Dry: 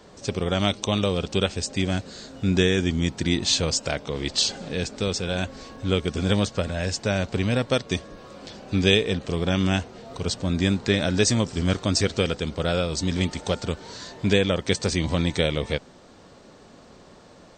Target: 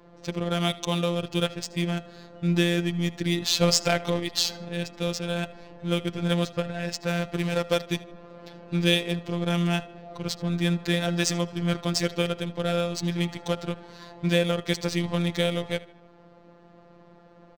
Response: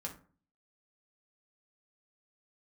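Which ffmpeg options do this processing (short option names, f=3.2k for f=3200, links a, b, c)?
-filter_complex "[0:a]asettb=1/sr,asplit=3[a][b][c];[a]atrim=end=3.614[d];[b]atrim=start=3.61:end=4.2,asetpts=PTS-STARTPTS,afade=t=in:d=0.004:c=qsin,afade=t=out:st=0.586:d=0.004:c=qsin,acontrast=67[e];[c]atrim=start=4.196[f];[d][e]acrossfade=d=0.004:c1=hsin:c2=qsin[g];[g][f]acrossfade=d=0.004:c1=qsin:c2=hsin,asettb=1/sr,asplit=3[h][i][j];[h]atrim=end=7.074[k];[i]atrim=start=7.07:end=8.03,asetpts=PTS-STARTPTS,afade=t=in:d=0.004:c=qsin,afade=t=out:st=0.956:d=0.004:c=qsin,acrusher=bits=3:mode=log:mix=0:aa=0.000001[l];[j]atrim=start=8.026[m];[k][l]acrossfade=d=0.004:c1=hsin:c2=qsin[n];[n][m]acrossfade=d=0.004:c1=qsin:c2=hsin,adynamicsmooth=sensitivity=5:basefreq=2k,afftfilt=real='hypot(re,im)*cos(PI*b)':imag='0':win_size=1024:overlap=0.75,asplit=2[o][p];[p]adelay=77,lowpass=f=4.1k:p=1,volume=-18dB,asplit=2[q][r];[r]adelay=77,lowpass=f=4.1k:p=1,volume=0.51,asplit=2[s][t];[t]adelay=77,lowpass=f=4.1k:p=1,volume=0.51,asplit=2[u][v];[v]adelay=77,lowpass=f=4.1k:p=1,volume=0.51[w];[o][q][s][u][w]amix=inputs=5:normalize=0,volume=1dB"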